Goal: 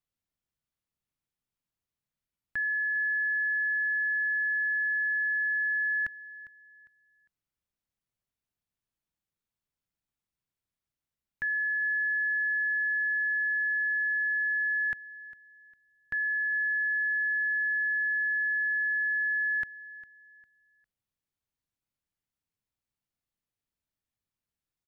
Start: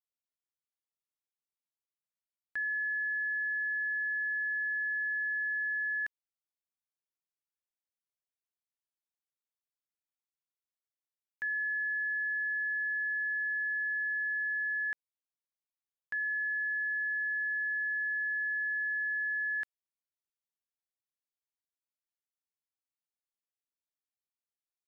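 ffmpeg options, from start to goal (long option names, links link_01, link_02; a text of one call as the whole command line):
ffmpeg -i in.wav -filter_complex "[0:a]bass=frequency=250:gain=14,treble=frequency=4000:gain=-4,acontrast=49,asplit=2[link_01][link_02];[link_02]aecho=0:1:403|806|1209:0.126|0.0378|0.0113[link_03];[link_01][link_03]amix=inputs=2:normalize=0,volume=-2dB" out.wav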